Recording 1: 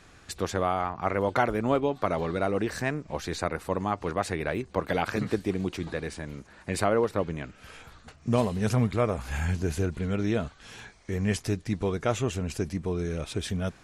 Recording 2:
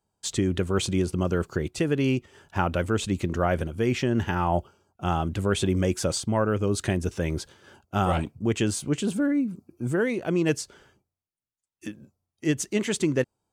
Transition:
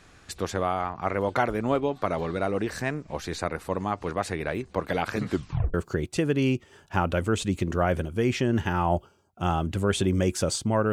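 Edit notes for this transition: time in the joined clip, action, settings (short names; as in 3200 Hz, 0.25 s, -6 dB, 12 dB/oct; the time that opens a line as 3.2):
recording 1
5.28 tape stop 0.46 s
5.74 switch to recording 2 from 1.36 s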